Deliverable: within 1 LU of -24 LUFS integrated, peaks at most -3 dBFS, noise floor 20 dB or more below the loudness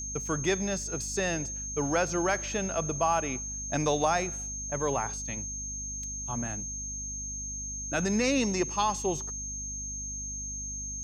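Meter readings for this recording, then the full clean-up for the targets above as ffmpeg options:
hum 50 Hz; highest harmonic 250 Hz; hum level -40 dBFS; steady tone 6.4 kHz; tone level -35 dBFS; loudness -30.5 LUFS; peak level -13.5 dBFS; loudness target -24.0 LUFS
-> -af "bandreject=f=50:t=h:w=4,bandreject=f=100:t=h:w=4,bandreject=f=150:t=h:w=4,bandreject=f=200:t=h:w=4,bandreject=f=250:t=h:w=4"
-af "bandreject=f=6400:w=30"
-af "volume=2.11"

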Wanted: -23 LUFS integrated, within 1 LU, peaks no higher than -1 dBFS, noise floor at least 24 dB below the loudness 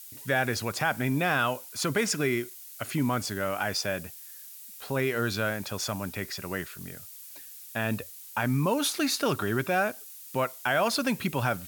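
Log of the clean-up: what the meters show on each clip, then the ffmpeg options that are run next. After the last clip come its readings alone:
noise floor -46 dBFS; noise floor target -53 dBFS; loudness -29.0 LUFS; peak level -12.5 dBFS; loudness target -23.0 LUFS
-> -af "afftdn=nr=7:nf=-46"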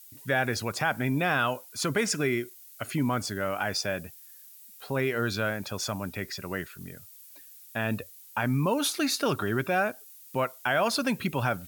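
noise floor -51 dBFS; noise floor target -53 dBFS
-> -af "afftdn=nr=6:nf=-51"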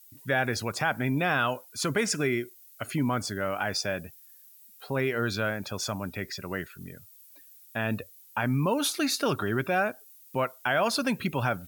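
noise floor -54 dBFS; loudness -29.0 LUFS; peak level -13.0 dBFS; loudness target -23.0 LUFS
-> -af "volume=2"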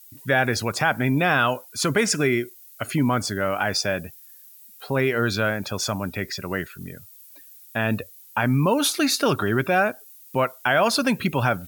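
loudness -23.0 LUFS; peak level -7.0 dBFS; noise floor -48 dBFS

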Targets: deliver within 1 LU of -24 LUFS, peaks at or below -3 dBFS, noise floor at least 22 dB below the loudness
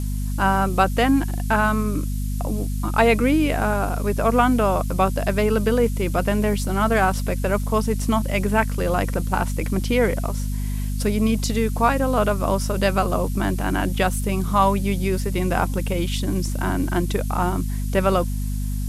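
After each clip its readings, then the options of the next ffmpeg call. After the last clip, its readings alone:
hum 50 Hz; highest harmonic 250 Hz; hum level -22 dBFS; noise floor -25 dBFS; noise floor target -44 dBFS; loudness -22.0 LUFS; peak level -2.5 dBFS; loudness target -24.0 LUFS
-> -af "bandreject=f=50:t=h:w=4,bandreject=f=100:t=h:w=4,bandreject=f=150:t=h:w=4,bandreject=f=200:t=h:w=4,bandreject=f=250:t=h:w=4"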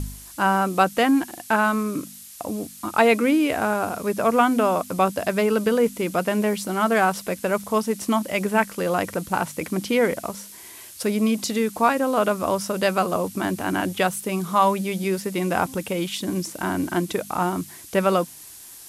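hum not found; noise floor -43 dBFS; noise floor target -45 dBFS
-> -af "afftdn=nr=6:nf=-43"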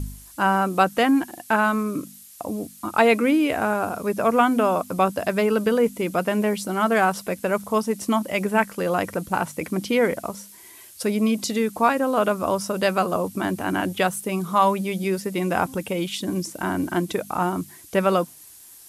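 noise floor -46 dBFS; loudness -23.0 LUFS; peak level -3.0 dBFS; loudness target -24.0 LUFS
-> -af "volume=0.891"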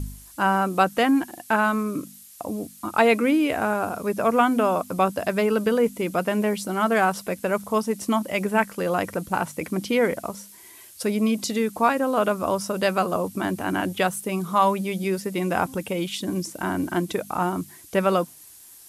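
loudness -24.0 LUFS; peak level -4.0 dBFS; noise floor -47 dBFS

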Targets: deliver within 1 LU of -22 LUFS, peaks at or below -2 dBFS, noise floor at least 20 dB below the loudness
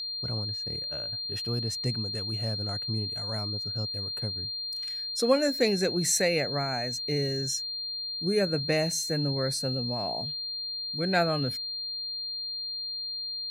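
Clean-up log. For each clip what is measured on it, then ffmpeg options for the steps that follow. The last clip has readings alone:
steady tone 4.2 kHz; tone level -32 dBFS; loudness -29.0 LUFS; peak level -11.0 dBFS; loudness target -22.0 LUFS
-> -af "bandreject=f=4200:w=30"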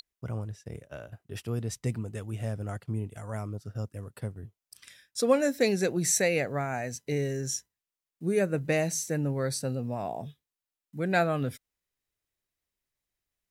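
steady tone not found; loudness -30.5 LUFS; peak level -11.5 dBFS; loudness target -22.0 LUFS
-> -af "volume=2.66"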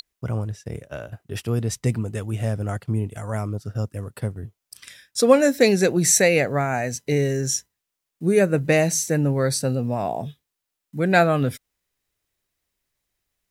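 loudness -22.0 LUFS; peak level -3.0 dBFS; noise floor -83 dBFS

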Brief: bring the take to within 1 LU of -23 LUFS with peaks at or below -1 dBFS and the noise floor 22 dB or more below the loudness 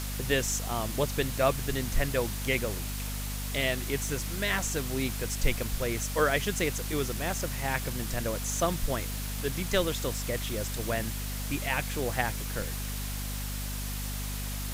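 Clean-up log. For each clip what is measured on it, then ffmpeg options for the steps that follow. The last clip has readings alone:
hum 50 Hz; highest harmonic 250 Hz; hum level -33 dBFS; noise floor -35 dBFS; noise floor target -53 dBFS; loudness -31.0 LUFS; peak level -11.5 dBFS; loudness target -23.0 LUFS
-> -af "bandreject=f=50:t=h:w=6,bandreject=f=100:t=h:w=6,bandreject=f=150:t=h:w=6,bandreject=f=200:t=h:w=6,bandreject=f=250:t=h:w=6"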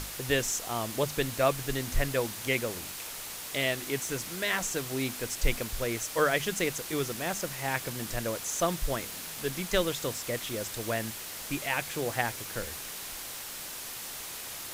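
hum not found; noise floor -41 dBFS; noise floor target -54 dBFS
-> -af "afftdn=nr=13:nf=-41"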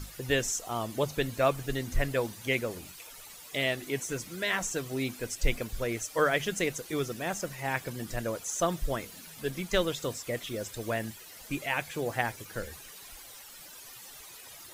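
noise floor -49 dBFS; noise floor target -54 dBFS
-> -af "afftdn=nr=6:nf=-49"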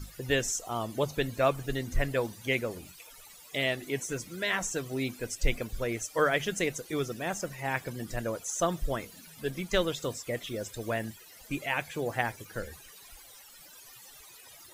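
noise floor -52 dBFS; noise floor target -54 dBFS
-> -af "afftdn=nr=6:nf=-52"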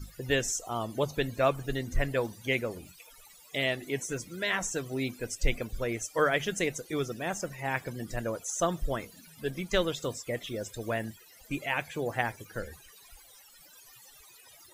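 noise floor -56 dBFS; loudness -32.0 LUFS; peak level -12.0 dBFS; loudness target -23.0 LUFS
-> -af "volume=2.82"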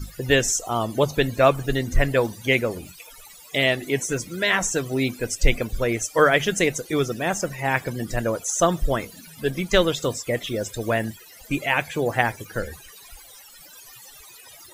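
loudness -23.0 LUFS; peak level -3.0 dBFS; noise floor -47 dBFS

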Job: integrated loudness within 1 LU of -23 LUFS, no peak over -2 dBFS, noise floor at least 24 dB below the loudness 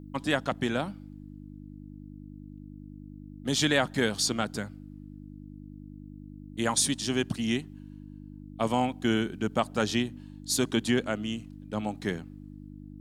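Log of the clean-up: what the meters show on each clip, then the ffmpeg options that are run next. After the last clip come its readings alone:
hum 50 Hz; highest harmonic 300 Hz; hum level -42 dBFS; loudness -29.0 LUFS; peak level -9.0 dBFS; loudness target -23.0 LUFS
-> -af "bandreject=f=50:t=h:w=4,bandreject=f=100:t=h:w=4,bandreject=f=150:t=h:w=4,bandreject=f=200:t=h:w=4,bandreject=f=250:t=h:w=4,bandreject=f=300:t=h:w=4"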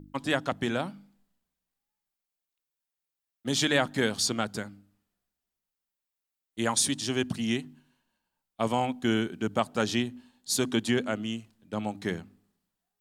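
hum not found; loudness -29.0 LUFS; peak level -9.0 dBFS; loudness target -23.0 LUFS
-> -af "volume=2"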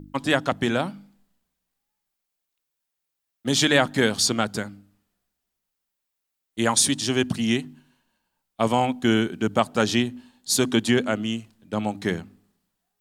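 loudness -23.0 LUFS; peak level -3.0 dBFS; noise floor -82 dBFS

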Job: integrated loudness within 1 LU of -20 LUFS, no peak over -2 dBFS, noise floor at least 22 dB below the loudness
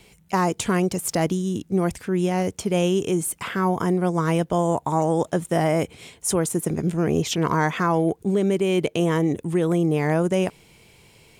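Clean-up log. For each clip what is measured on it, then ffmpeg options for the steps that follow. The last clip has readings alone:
loudness -23.0 LUFS; peak level -8.0 dBFS; loudness target -20.0 LUFS
-> -af "volume=1.41"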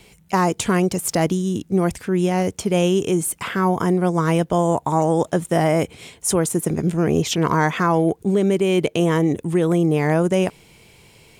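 loudness -20.0 LUFS; peak level -5.0 dBFS; noise floor -53 dBFS

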